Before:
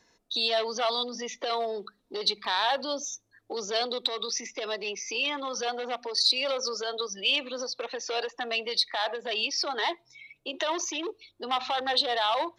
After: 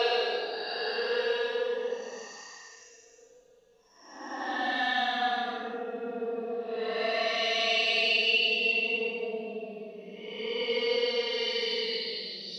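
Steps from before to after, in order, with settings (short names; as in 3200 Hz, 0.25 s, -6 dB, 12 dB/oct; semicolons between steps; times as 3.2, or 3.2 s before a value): Paulstretch 22×, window 0.05 s, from 8.19; gain +1.5 dB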